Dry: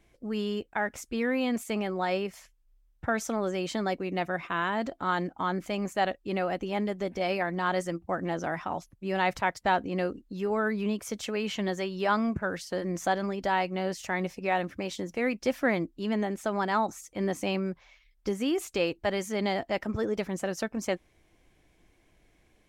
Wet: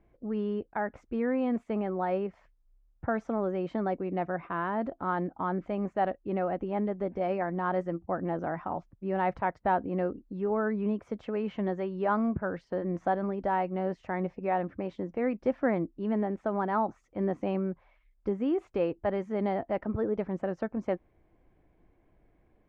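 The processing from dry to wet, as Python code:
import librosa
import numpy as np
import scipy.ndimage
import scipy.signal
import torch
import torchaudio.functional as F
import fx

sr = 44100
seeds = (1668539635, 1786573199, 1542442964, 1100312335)

y = scipy.signal.sosfilt(scipy.signal.butter(2, 1200.0, 'lowpass', fs=sr, output='sos'), x)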